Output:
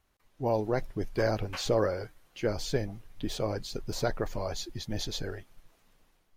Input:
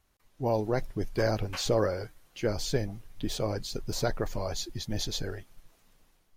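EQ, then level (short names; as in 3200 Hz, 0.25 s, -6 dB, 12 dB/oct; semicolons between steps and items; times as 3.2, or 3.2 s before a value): tone controls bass -2 dB, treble -4 dB; 0.0 dB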